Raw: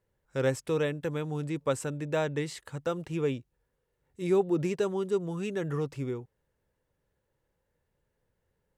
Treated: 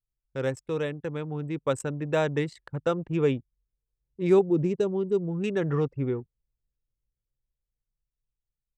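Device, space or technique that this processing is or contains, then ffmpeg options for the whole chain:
voice memo with heavy noise removal: -filter_complex "[0:a]asettb=1/sr,asplit=3[s0][s1][s2];[s0]atrim=end=4.394[s3];[s1]atrim=start=4.39:end=5.44,asetpts=PTS-STARTPTS,afade=t=in:d=0.004:c=qsin,afade=t=out:st=1.046:d=0.004:c=qsin,equalizer=f=1500:w=0.53:g=-10[s4];[s2]atrim=start=5.436[s5];[s3][s4]acrossfade=d=0.004:c1=hsin:c2=qsin[s6];[s6][s5]acrossfade=d=0.004:c1=qsin:c2=hsin,anlmdn=1,dynaudnorm=f=530:g=7:m=2.24,volume=0.841"

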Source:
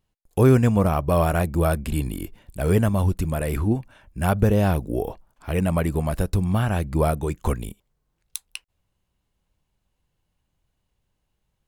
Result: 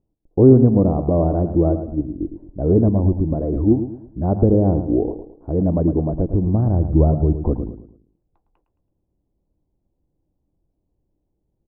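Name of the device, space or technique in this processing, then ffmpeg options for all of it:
under water: -filter_complex "[0:a]asplit=3[s0][s1][s2];[s0]afade=t=out:st=1.72:d=0.02[s3];[s1]agate=range=0.355:threshold=0.0891:ratio=16:detection=peak,afade=t=in:st=1.72:d=0.02,afade=t=out:st=2.19:d=0.02[s4];[s2]afade=t=in:st=2.19:d=0.02[s5];[s3][s4][s5]amix=inputs=3:normalize=0,asettb=1/sr,asplit=3[s6][s7][s8];[s6]atrim=end=6.394[s9];[s7]atrim=start=6.39:end=7.37,asetpts=PTS-STARTPTS,afade=t=in:d=0.004:c=qsin,afade=t=out:st=0.976:d=0.004:c=qsin,asubboost=boost=10:cutoff=170[s10];[s8]atrim=start=7.366[s11];[s9][s10]acrossfade=d=0.004:c1=hsin:c2=qsin[s12];[s12][s11]acrossfade=d=0.004:c1=qsin:c2=hsin,lowpass=f=720:w=0.5412,lowpass=f=720:w=1.3066,equalizer=f=310:t=o:w=0.59:g=10.5,aecho=1:1:109|218|327|436:0.316|0.114|0.041|0.0148,volume=1.19"

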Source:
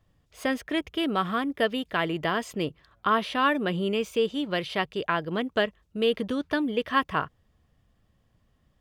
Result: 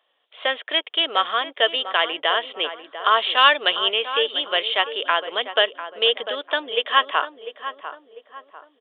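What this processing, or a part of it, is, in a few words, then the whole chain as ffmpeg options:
musical greeting card: -filter_complex "[0:a]asettb=1/sr,asplit=3[s0][s1][s2];[s0]atrim=end=3.374[s3];[s1]atrim=start=3.37:end=3.91,asetpts=PTS-STARTPTS,afade=t=in:d=0.004:c=qsin,afade=t=out:st=0.536:d=0.004:c=qsin,highshelf=f=2400:g=9.5[s4];[s2]atrim=start=3.906[s5];[s3][s4]acrossfade=d=0.004:c1=hsin:c2=qsin[s6];[s6][s5]acrossfade=d=0.004:c1=qsin:c2=hsin,aresample=8000,aresample=44100,highpass=f=510:w=0.5412,highpass=f=510:w=1.3066,equalizer=f=3200:t=o:w=0.4:g=10,asplit=2[s7][s8];[s8]adelay=697,lowpass=f=1400:p=1,volume=0.316,asplit=2[s9][s10];[s10]adelay=697,lowpass=f=1400:p=1,volume=0.43,asplit=2[s11][s12];[s12]adelay=697,lowpass=f=1400:p=1,volume=0.43,asplit=2[s13][s14];[s14]adelay=697,lowpass=f=1400:p=1,volume=0.43,asplit=2[s15][s16];[s16]adelay=697,lowpass=f=1400:p=1,volume=0.43[s17];[s7][s9][s11][s13][s15][s17]amix=inputs=6:normalize=0,volume=2"

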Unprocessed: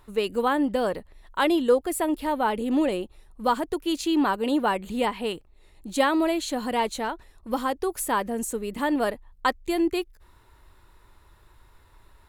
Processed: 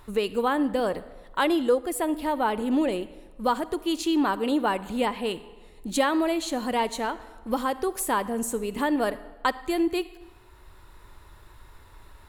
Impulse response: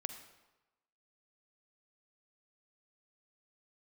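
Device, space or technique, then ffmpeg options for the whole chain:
ducked reverb: -filter_complex "[0:a]asplit=3[s0][s1][s2];[1:a]atrim=start_sample=2205[s3];[s1][s3]afir=irnorm=-1:irlink=0[s4];[s2]apad=whole_len=541945[s5];[s4][s5]sidechaincompress=threshold=0.0316:ratio=8:attack=16:release=1280,volume=2.82[s6];[s0][s6]amix=inputs=2:normalize=0,volume=0.562"

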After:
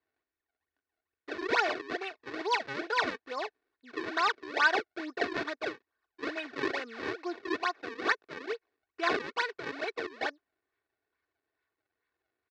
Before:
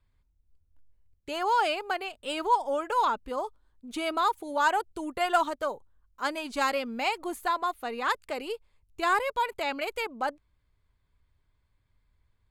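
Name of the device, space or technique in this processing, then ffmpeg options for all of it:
circuit-bent sampling toy: -af "acrusher=samples=36:mix=1:aa=0.000001:lfo=1:lforange=57.6:lforate=2.3,highpass=450,equalizer=f=760:t=q:w=4:g=-7,equalizer=f=1100:t=q:w=4:g=-4,equalizer=f=1700:t=q:w=4:g=5,equalizer=f=3100:t=q:w=4:g=-7,lowpass=f=4300:w=0.5412,lowpass=f=4300:w=1.3066,aecho=1:1:2.7:0.59"

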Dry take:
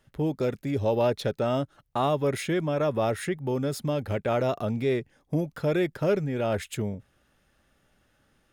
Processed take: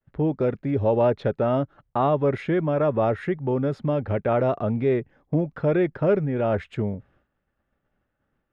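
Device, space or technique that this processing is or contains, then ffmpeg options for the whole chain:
hearing-loss simulation: -af "lowpass=1800,agate=range=0.0224:threshold=0.00126:ratio=3:detection=peak,volume=1.58"

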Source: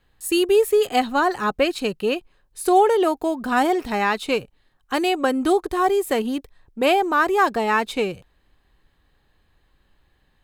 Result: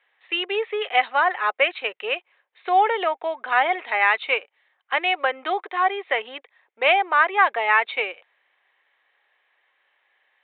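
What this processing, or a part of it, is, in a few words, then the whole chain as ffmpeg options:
musical greeting card: -af "aresample=8000,aresample=44100,highpass=f=550:w=0.5412,highpass=f=550:w=1.3066,equalizer=f=2100:t=o:w=0.46:g=11"

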